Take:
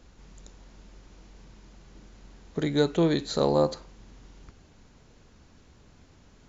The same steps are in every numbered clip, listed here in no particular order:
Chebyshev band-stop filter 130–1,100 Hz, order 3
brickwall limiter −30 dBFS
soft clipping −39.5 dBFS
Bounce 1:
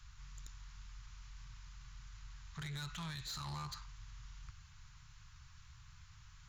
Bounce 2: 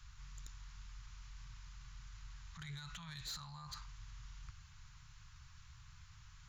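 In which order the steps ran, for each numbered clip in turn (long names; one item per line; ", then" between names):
Chebyshev band-stop filter, then brickwall limiter, then soft clipping
brickwall limiter, then Chebyshev band-stop filter, then soft clipping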